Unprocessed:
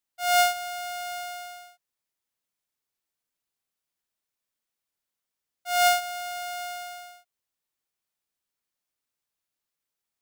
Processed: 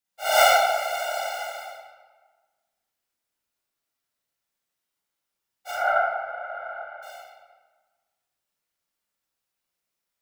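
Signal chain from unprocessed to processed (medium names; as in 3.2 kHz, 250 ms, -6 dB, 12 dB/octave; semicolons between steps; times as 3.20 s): 5.71–7.03 s: four-pole ladder low-pass 1.7 kHz, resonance 45%; whisper effect; reverberation RT60 1.4 s, pre-delay 24 ms, DRR -7 dB; trim -3 dB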